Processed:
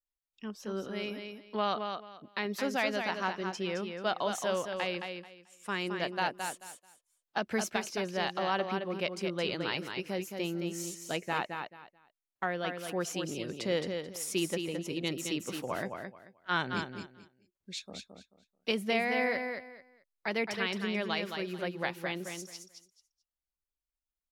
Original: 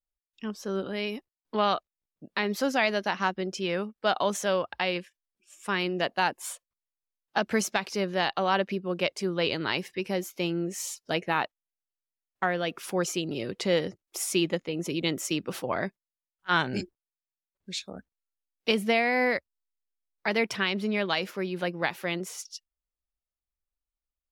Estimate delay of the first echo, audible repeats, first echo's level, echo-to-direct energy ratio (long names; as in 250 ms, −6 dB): 218 ms, 3, −6.0 dB, −6.0 dB